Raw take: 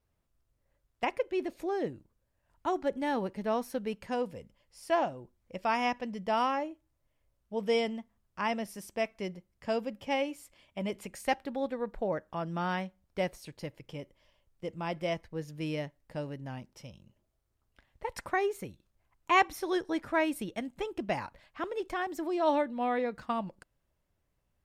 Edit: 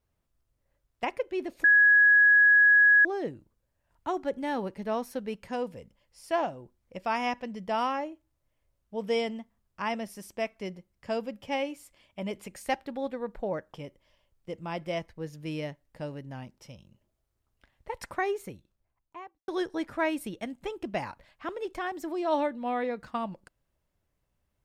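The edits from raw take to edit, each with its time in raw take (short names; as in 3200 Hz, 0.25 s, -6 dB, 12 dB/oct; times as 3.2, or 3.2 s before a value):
1.64 add tone 1670 Hz -15.5 dBFS 1.41 s
12.33–13.89 cut
18.5–19.63 studio fade out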